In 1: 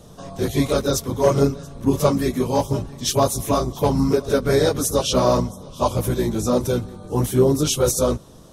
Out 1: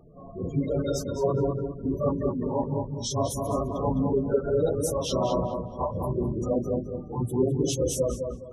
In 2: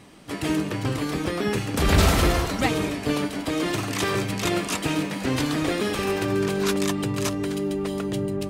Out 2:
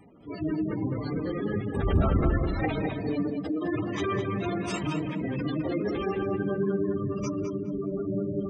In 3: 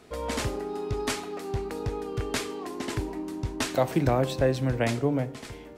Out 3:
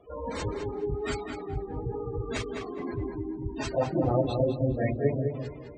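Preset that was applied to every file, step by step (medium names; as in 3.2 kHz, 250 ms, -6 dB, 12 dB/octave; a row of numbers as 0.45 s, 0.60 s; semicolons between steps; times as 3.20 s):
phase randomisation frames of 100 ms; spectral gate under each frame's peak -15 dB strong; on a send: filtered feedback delay 208 ms, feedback 28%, low-pass 3.3 kHz, level -5 dB; on the sum: peak normalisation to -12 dBFS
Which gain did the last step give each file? -7.5 dB, -4.0 dB, -2.0 dB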